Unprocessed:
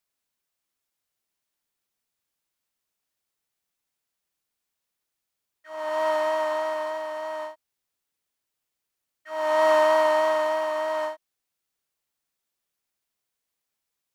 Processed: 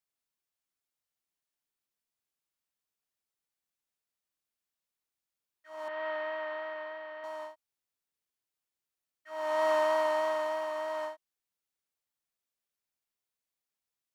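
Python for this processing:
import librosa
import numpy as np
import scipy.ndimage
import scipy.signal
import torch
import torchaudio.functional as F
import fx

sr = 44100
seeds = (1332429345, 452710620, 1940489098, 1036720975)

y = fx.cabinet(x, sr, low_hz=330.0, low_slope=12, high_hz=3400.0, hz=(730.0, 1000.0, 1800.0), db=(-7, -6, 4), at=(5.88, 7.24))
y = y * librosa.db_to_amplitude(-8.0)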